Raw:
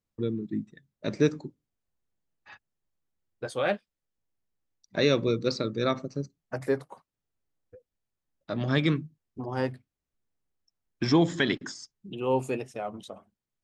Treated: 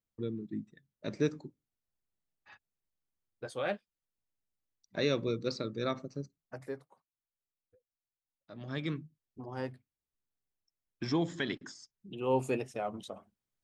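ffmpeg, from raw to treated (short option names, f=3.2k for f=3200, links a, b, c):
-af "volume=9dB,afade=t=out:st=6.2:d=0.68:silence=0.298538,afade=t=in:st=8.52:d=0.52:silence=0.375837,afade=t=in:st=11.93:d=0.6:silence=0.421697"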